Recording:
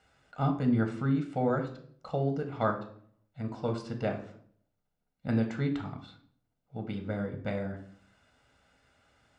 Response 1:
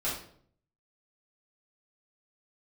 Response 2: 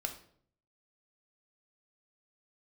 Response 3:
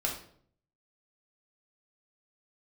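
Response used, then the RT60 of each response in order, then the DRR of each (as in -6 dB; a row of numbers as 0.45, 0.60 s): 2; 0.60, 0.60, 0.60 s; -9.0, 4.5, -1.5 dB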